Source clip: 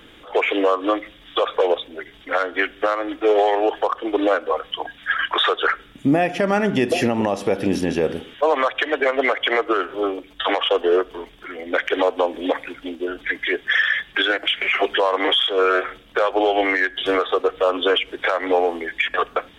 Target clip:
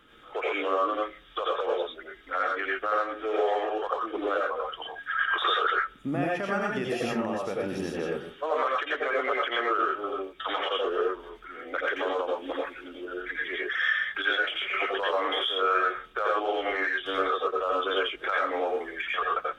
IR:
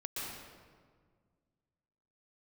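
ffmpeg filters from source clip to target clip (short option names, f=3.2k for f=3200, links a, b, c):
-filter_complex "[0:a]equalizer=f=1.3k:t=o:w=0.36:g=11.5[a];[1:a]atrim=start_sample=2205,afade=t=out:st=0.23:d=0.01,atrim=end_sample=10584,asetrate=61740,aresample=44100[b];[a][b]afir=irnorm=-1:irlink=0,volume=-6.5dB"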